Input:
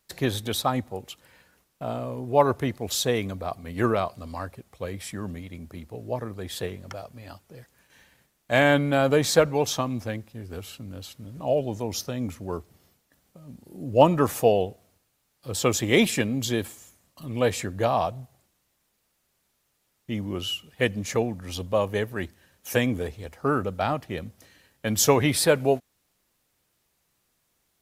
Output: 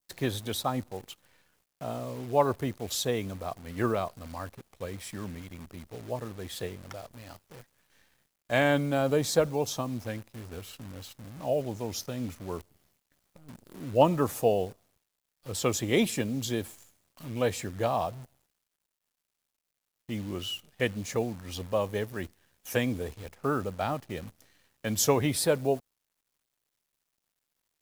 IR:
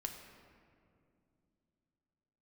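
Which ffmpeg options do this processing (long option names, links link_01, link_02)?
-af "acrusher=bits=8:dc=4:mix=0:aa=0.000001,adynamicequalizer=threshold=0.0112:dfrequency=2000:dqfactor=0.77:tfrequency=2000:tqfactor=0.77:attack=5:release=100:ratio=0.375:range=3.5:mode=cutabove:tftype=bell,volume=-4.5dB"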